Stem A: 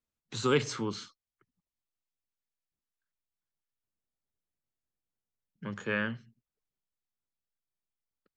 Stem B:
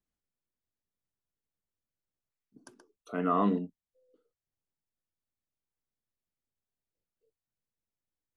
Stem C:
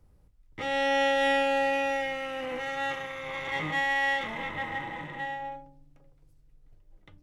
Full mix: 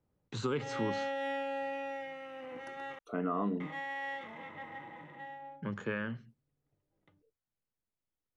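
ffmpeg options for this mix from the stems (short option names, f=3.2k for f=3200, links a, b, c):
-filter_complex "[0:a]agate=range=-33dB:threshold=-53dB:ratio=3:detection=peak,acompressor=threshold=-32dB:ratio=4,volume=1.5dB[a];[1:a]acompressor=threshold=-32dB:ratio=3,volume=1dB[b];[2:a]highpass=130,volume=-10dB,asplit=3[c][d][e];[c]atrim=end=2.99,asetpts=PTS-STARTPTS,afade=t=out:st=2.986:d=0.004:c=hsin[f];[d]atrim=start=2.99:end=3.6,asetpts=PTS-STARTPTS,volume=0[g];[e]atrim=start=3.6,asetpts=PTS-STARTPTS,afade=t=in:d=0.004:c=hsin[h];[f][g][h]concat=n=3:v=0:a=1[i];[a][b][i]amix=inputs=3:normalize=0,highshelf=f=3k:g=-11.5"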